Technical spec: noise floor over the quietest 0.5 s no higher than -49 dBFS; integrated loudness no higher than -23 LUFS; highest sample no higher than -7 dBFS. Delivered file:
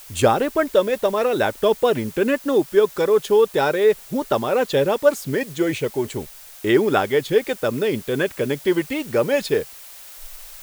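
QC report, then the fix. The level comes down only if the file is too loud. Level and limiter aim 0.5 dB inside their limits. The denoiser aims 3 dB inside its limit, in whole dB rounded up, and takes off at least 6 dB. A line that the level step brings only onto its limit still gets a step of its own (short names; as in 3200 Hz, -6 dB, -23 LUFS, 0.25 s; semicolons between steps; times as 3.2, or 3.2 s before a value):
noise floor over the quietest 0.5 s -41 dBFS: fail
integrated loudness -20.5 LUFS: fail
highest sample -3.5 dBFS: fail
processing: denoiser 8 dB, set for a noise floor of -41 dBFS; gain -3 dB; limiter -7.5 dBFS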